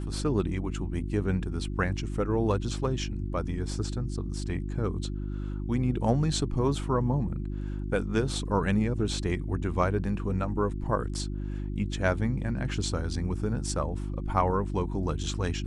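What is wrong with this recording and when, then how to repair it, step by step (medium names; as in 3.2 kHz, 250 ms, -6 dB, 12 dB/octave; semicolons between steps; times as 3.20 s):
hum 50 Hz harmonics 7 -33 dBFS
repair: de-hum 50 Hz, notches 7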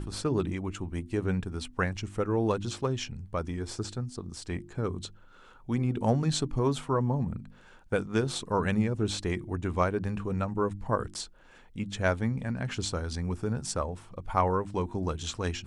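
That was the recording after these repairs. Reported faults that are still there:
nothing left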